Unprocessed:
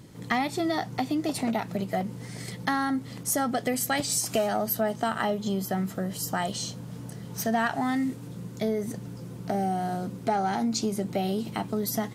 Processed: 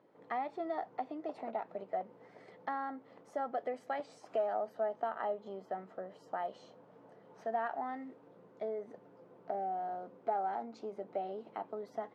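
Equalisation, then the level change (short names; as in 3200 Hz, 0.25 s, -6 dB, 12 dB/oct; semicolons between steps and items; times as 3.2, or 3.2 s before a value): ladder band-pass 720 Hz, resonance 25%; +3.0 dB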